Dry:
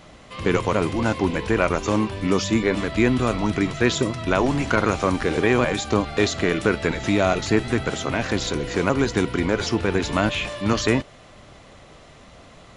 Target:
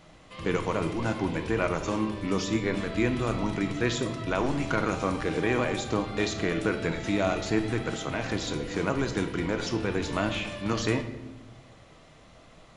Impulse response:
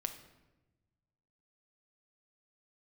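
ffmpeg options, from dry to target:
-filter_complex "[1:a]atrim=start_sample=2205[a];[0:a][a]afir=irnorm=-1:irlink=0,volume=-6.5dB"

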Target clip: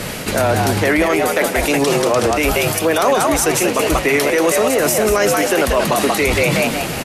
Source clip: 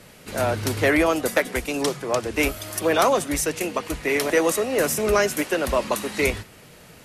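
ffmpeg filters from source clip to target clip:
-filter_complex "[0:a]asplit=5[a][b][c][d][e];[b]adelay=185,afreqshift=94,volume=-6dB[f];[c]adelay=370,afreqshift=188,volume=-16.2dB[g];[d]adelay=555,afreqshift=282,volume=-26.3dB[h];[e]adelay=740,afreqshift=376,volume=-36.5dB[i];[a][f][g][h][i]amix=inputs=5:normalize=0,areverse,acompressor=threshold=-31dB:ratio=8,areverse,alimiter=level_in=28dB:limit=-1dB:release=50:level=0:latency=1,volume=-5.5dB"

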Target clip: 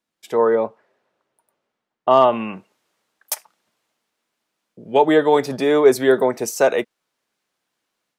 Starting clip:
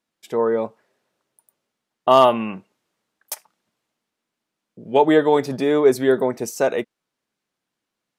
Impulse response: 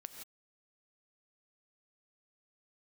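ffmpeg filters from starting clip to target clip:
-filter_complex "[0:a]asettb=1/sr,asplit=3[a][b][c];[a]atrim=end=0.554[d];[b]atrim=start=0.55:end=2.33,asetpts=PTS-STARTPTS,afade=t=in:d=0.004:c=qsin,afade=t=out:st=1.776:d=0.004:c=qsin,lowpass=f=1.7k:p=1[e];[c]atrim=start=2.326[f];[d][e]acrossfade=d=0.004:c1=hsin:c2=qsin[g];[g][f]acrossfade=d=0.004:c1=qsin:c2=hsin,acrossover=split=390[h][i];[i]dynaudnorm=f=180:g=3:m=7dB[j];[h][j]amix=inputs=2:normalize=0,volume=-1.5dB"

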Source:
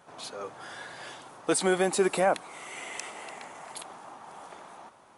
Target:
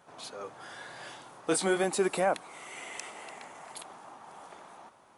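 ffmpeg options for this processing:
-filter_complex "[0:a]asettb=1/sr,asplit=3[a][b][c];[a]atrim=end=0.834[d];[b]atrim=start=0.83:end=1.84,asetpts=PTS-STARTPTS,afade=t=in:d=0.004:c=qsin,afade=t=out:st=1.006:d=0.004:c=qsin,asplit=2[e][f];[f]adelay=25,volume=-7dB[g];[e][g]amix=inputs=2:normalize=0,atrim=end_sample=44541[h];[c]atrim=start=1.836[i];[d][h]acrossfade=d=0.004:c1=hsin:c2=qsin[j];[j][i]acrossfade=d=0.004:c1=qsin:c2=hsin,volume=-3dB"

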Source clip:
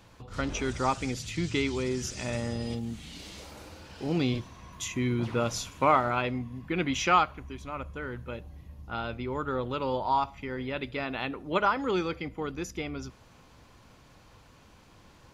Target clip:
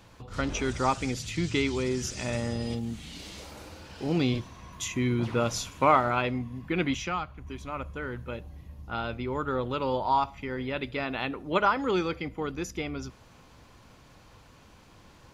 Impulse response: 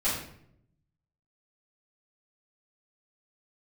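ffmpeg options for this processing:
-filter_complex "[0:a]asettb=1/sr,asplit=3[a][b][c];[a]atrim=end=6.944[d];[b]atrim=start=6.94:end=7.47,asetpts=PTS-STARTPTS,afade=t=in:d=0.004:c=qsin,afade=t=out:st=0.526:d=0.004:c=qsin,acrossover=split=180[e][f];[f]acompressor=threshold=-50dB:ratio=1.5[g];[e][g]amix=inputs=2:normalize=0[h];[c]atrim=start=7.466[i];[d][h]acrossfade=d=0.004:c1=hsin:c2=qsin[j];[j][i]acrossfade=d=0.004:c1=qsin:c2=hsin,volume=1.5dB"

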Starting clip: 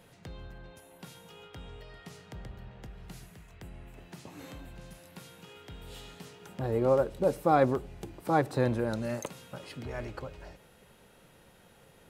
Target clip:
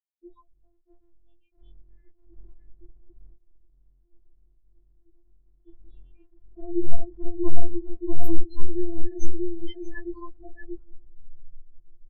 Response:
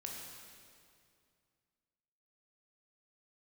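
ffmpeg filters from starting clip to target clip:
-filter_complex "[0:a]aeval=exprs='0.299*sin(PI/2*2.24*val(0)/0.299)':c=same,flanger=delay=18:depth=3.1:speed=2.7,asuperstop=centerf=1400:order=8:qfactor=4,aemphasis=mode=production:type=50kf,acrossover=split=460[a][b];[b]acompressor=threshold=-34dB:ratio=8[c];[a][c]amix=inputs=2:normalize=0,bandreject=f=204.7:t=h:w=4,bandreject=f=409.4:t=h:w=4,bandreject=f=614.1:t=h:w=4,bandreject=f=818.8:t=h:w=4,asubboost=boost=12:cutoff=120,aecho=1:1:638|1276|1914:0.596|0.107|0.0193,asplit=3[d][e][f];[d]afade=t=out:st=3.34:d=0.02[g];[e]acompressor=threshold=-32dB:ratio=12,afade=t=in:st=3.34:d=0.02,afade=t=out:st=5.67:d=0.02[h];[f]afade=t=in:st=5.67:d=0.02[i];[g][h][i]amix=inputs=3:normalize=0,afftfilt=real='re*gte(hypot(re,im),0.0447)':imag='im*gte(hypot(re,im),0.0447)':win_size=1024:overlap=0.75,alimiter=level_in=11dB:limit=-1dB:release=50:level=0:latency=1,afftfilt=real='re*4*eq(mod(b,16),0)':imag='im*4*eq(mod(b,16),0)':win_size=2048:overlap=0.75,volume=-6.5dB"

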